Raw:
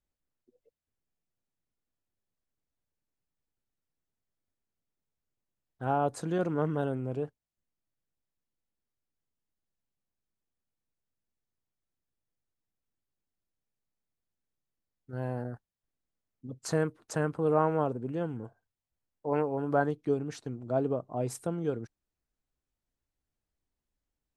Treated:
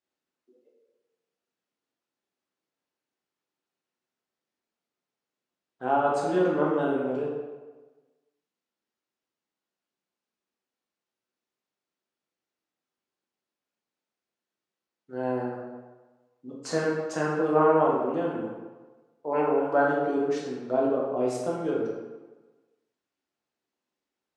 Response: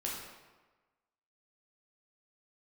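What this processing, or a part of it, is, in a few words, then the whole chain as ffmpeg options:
supermarket ceiling speaker: -filter_complex "[0:a]highpass=280,lowpass=6.2k[a];[1:a]atrim=start_sample=2205[b];[a][b]afir=irnorm=-1:irlink=0,volume=4.5dB"

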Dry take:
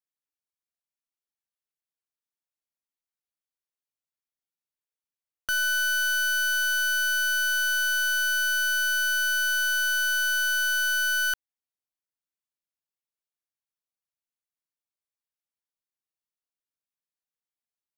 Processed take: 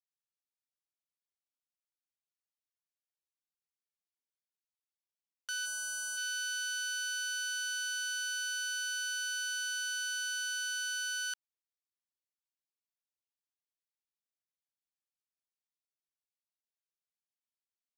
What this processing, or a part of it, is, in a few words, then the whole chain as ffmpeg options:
piezo pickup straight into a mixer: -filter_complex "[0:a]asplit=3[a][b][c];[a]afade=t=out:st=5.65:d=0.02[d];[b]equalizer=f=125:t=o:w=1:g=-11,equalizer=f=250:t=o:w=1:g=-10,equalizer=f=500:t=o:w=1:g=6,equalizer=f=1k:t=o:w=1:g=10,equalizer=f=2k:t=o:w=1:g=-11,equalizer=f=4k:t=o:w=1:g=-9,equalizer=f=8k:t=o:w=1:g=7,afade=t=in:st=5.65:d=0.02,afade=t=out:st=6.16:d=0.02[e];[c]afade=t=in:st=6.16:d=0.02[f];[d][e][f]amix=inputs=3:normalize=0,lowpass=5.4k,aderivative"

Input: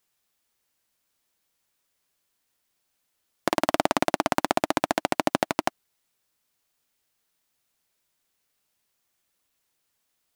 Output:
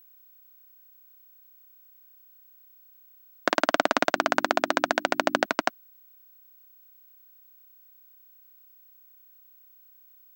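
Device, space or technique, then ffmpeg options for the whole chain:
old television with a line whistle: -filter_complex "[0:a]highpass=f=180:w=0.5412,highpass=f=180:w=1.3066,equalizer=f=190:t=q:w=4:g=-9,equalizer=f=340:t=q:w=4:g=-5,equalizer=f=850:t=q:w=4:g=-5,equalizer=f=1.5k:t=q:w=4:g=7,lowpass=f=7k:w=0.5412,lowpass=f=7k:w=1.3066,aeval=exprs='val(0)+0.002*sin(2*PI*15734*n/s)':c=same,asettb=1/sr,asplit=3[a][b][c];[a]atrim=end=4.124[d];[b]atrim=start=4.12:end=5.46,asetpts=PTS-STARTPTS,afade=t=in:d=0.004:c=qsin,afade=t=out:st=1.336:d=0.004:c=qsin,bandreject=f=50:t=h:w=6,bandreject=f=100:t=h:w=6,bandreject=f=150:t=h:w=6,bandreject=f=200:t=h:w=6,bandreject=f=250:t=h:w=6,bandreject=f=300:t=h:w=6,bandreject=f=350:t=h:w=6[e];[c]atrim=start=5.456[f];[d][e]acrossfade=d=0.004:c1=hsin:c2=qsin[g];[g][f]acrossfade=d=0.004:c1=qsin:c2=hsin,volume=1.5dB"

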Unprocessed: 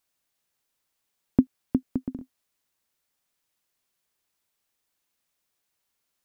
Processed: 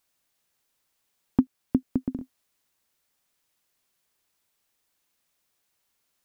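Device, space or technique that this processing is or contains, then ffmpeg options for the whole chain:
clipper into limiter: -af "asoftclip=type=hard:threshold=-8dB,alimiter=limit=-12.5dB:level=0:latency=1:release=475,volume=3.5dB"

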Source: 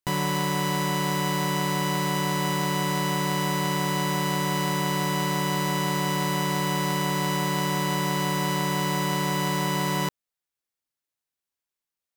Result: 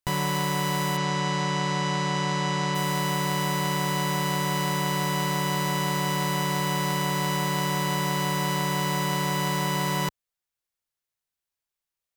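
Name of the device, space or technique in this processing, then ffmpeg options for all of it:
low shelf boost with a cut just above: -filter_complex "[0:a]asplit=3[a][b][c];[a]afade=t=out:st=0.96:d=0.02[d];[b]lowpass=f=7.1k:w=0.5412,lowpass=f=7.1k:w=1.3066,afade=t=in:st=0.96:d=0.02,afade=t=out:st=2.74:d=0.02[e];[c]afade=t=in:st=2.74:d=0.02[f];[d][e][f]amix=inputs=3:normalize=0,lowshelf=f=83:g=6.5,equalizer=f=260:t=o:w=0.83:g=-6"

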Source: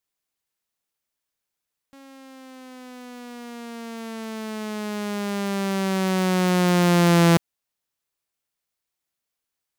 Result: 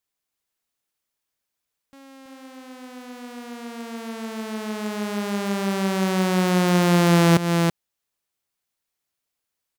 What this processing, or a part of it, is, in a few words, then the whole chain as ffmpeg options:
ducked delay: -filter_complex "[0:a]asplit=3[a][b][c];[b]adelay=328,volume=-4dB[d];[c]apad=whole_len=446034[e];[d][e]sidechaincompress=threshold=-22dB:ratio=8:attack=5.5:release=211[f];[a][f]amix=inputs=2:normalize=0"

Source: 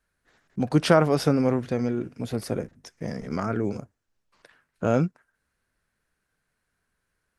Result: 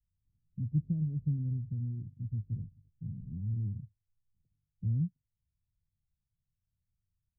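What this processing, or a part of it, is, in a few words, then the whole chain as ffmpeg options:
the neighbour's flat through the wall: -af "lowpass=f=150:w=0.5412,lowpass=f=150:w=1.3066,equalizer=f=100:t=o:w=0.43:g=6,volume=-2.5dB"

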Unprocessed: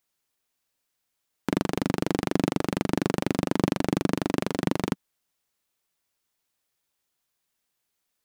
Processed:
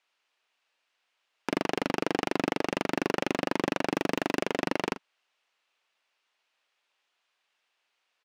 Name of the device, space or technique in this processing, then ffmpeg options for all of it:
megaphone: -filter_complex "[0:a]asettb=1/sr,asplit=3[a][b][c];[a]atrim=end=3.954[d];[b]atrim=start=3.95:end=4.39,asetpts=PTS-STARTPTS,afade=t=in:d=0.004:c=qsin,afade=t=out:st=0.436:d=0.004:c=qsin,highshelf=f=8.2k:g=8.5[e];[c]atrim=start=4.386[f];[d][e]acrossfade=d=0.004:c1=hsin:c2=qsin[g];[g][f]acrossfade=d=0.004:c1=qsin:c2=hsin,highpass=590,lowpass=3.6k,equalizer=f=2.7k:t=o:w=0.39:g=4.5,asoftclip=type=hard:threshold=-25dB,asplit=2[h][i];[i]adelay=41,volume=-12.5dB[j];[h][j]amix=inputs=2:normalize=0,volume=8dB"

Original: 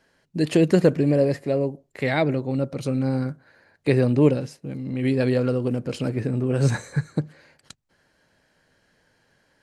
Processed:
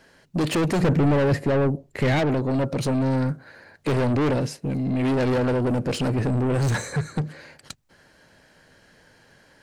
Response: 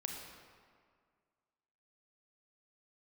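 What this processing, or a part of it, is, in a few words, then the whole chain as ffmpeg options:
saturation between pre-emphasis and de-emphasis: -filter_complex "[0:a]highshelf=f=5.4k:g=10.5,asoftclip=type=tanh:threshold=-28.5dB,highshelf=f=5.4k:g=-10.5,asettb=1/sr,asplit=3[a][b][c];[a]atrim=end=0.804[d];[b]atrim=start=0.8:end=2.19,asetpts=PTS-STARTPTS,afade=t=in:d=0.004:c=qsin,afade=t=out:st=1.386:d=0.004:c=qsin,bass=f=250:g=6,treble=f=4k:g=-3[e];[c]atrim=start=2.186[f];[d][e]acrossfade=d=0.004:c1=hsin:c2=qsin[g];[g][f]acrossfade=d=0.004:c1=qsin:c2=hsin,volume=9dB"

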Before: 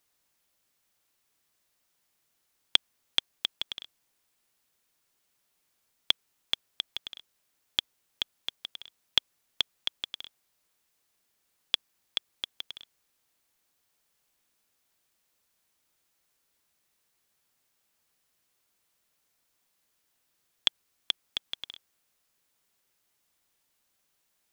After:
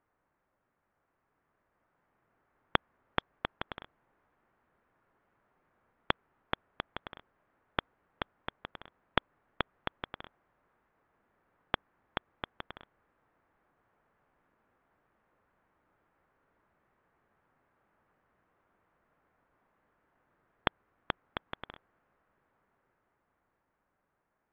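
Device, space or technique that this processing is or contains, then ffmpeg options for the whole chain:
action camera in a waterproof case: -af "lowpass=f=1.6k:w=0.5412,lowpass=f=1.6k:w=1.3066,dynaudnorm=f=180:g=21:m=6dB,volume=6dB" -ar 44100 -c:a aac -b:a 48k

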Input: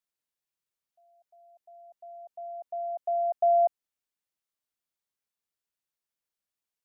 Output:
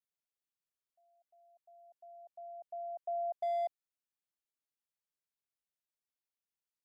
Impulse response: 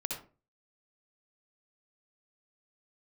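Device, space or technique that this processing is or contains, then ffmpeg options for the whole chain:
limiter into clipper: -af "alimiter=limit=-21dB:level=0:latency=1,asoftclip=type=hard:threshold=-22dB,volume=-8.5dB"

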